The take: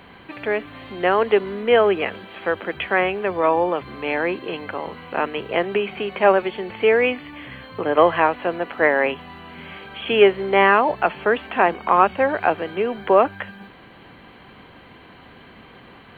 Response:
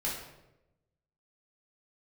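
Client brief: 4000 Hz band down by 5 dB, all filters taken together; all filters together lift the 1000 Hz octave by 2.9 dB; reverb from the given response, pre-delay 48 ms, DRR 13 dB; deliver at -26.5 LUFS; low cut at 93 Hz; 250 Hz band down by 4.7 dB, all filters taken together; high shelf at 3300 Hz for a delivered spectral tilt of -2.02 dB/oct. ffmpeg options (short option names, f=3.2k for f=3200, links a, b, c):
-filter_complex "[0:a]highpass=93,equalizer=f=250:t=o:g=-8,equalizer=f=1k:t=o:g=5,highshelf=f=3.3k:g=-7.5,equalizer=f=4k:t=o:g=-3,asplit=2[a][b];[1:a]atrim=start_sample=2205,adelay=48[c];[b][c]afir=irnorm=-1:irlink=0,volume=-17.5dB[d];[a][d]amix=inputs=2:normalize=0,volume=-7dB"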